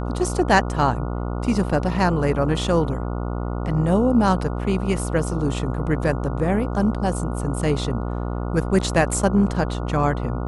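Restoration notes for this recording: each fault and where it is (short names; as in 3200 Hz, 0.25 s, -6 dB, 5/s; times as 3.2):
buzz 60 Hz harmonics 24 -26 dBFS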